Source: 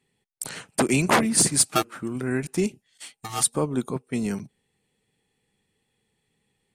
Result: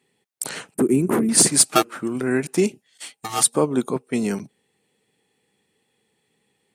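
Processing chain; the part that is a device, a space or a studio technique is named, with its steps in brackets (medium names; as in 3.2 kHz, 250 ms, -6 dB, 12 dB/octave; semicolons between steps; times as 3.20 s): filter by subtraction (in parallel: low-pass 360 Hz 12 dB/octave + polarity flip); 0.74–1.29 s: on the sum: FFT filter 400 Hz 0 dB, 620 Hz -16 dB, 1.3 kHz -12 dB, 4.8 kHz -27 dB, 11 kHz -4 dB; trim +4.5 dB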